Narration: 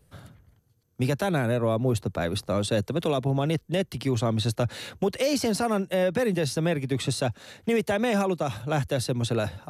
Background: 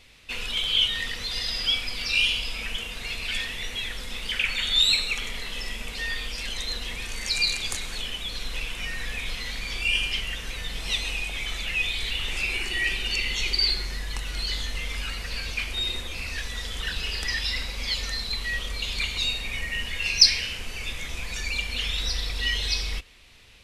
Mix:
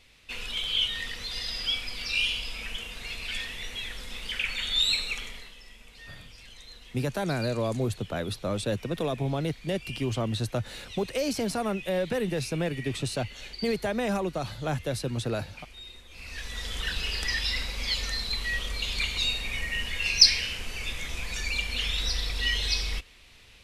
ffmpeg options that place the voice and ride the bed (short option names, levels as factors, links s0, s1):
-filter_complex "[0:a]adelay=5950,volume=0.631[s0];[1:a]volume=3.76,afade=t=out:st=5.13:d=0.43:silence=0.237137,afade=t=in:st=16.08:d=0.65:silence=0.158489[s1];[s0][s1]amix=inputs=2:normalize=0"